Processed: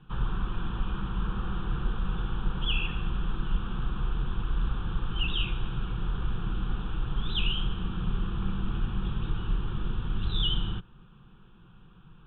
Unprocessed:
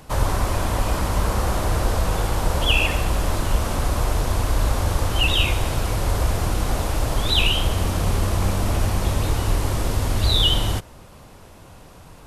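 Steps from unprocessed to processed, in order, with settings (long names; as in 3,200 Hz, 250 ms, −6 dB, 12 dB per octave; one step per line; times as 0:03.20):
Butterworth low-pass 3,500 Hz 96 dB per octave
flat-topped bell 650 Hz −13.5 dB
phaser with its sweep stopped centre 410 Hz, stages 8
level −3.5 dB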